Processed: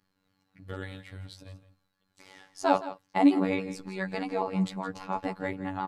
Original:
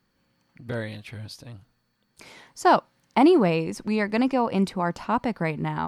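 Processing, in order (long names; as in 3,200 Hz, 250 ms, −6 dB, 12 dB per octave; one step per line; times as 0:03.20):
pitch shifter swept by a sawtooth −2.5 semitones, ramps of 276 ms
comb filter 7 ms
phases set to zero 94.8 Hz
on a send: single-tap delay 165 ms −14.5 dB
on the sum: downsampling to 32,000 Hz
level −4 dB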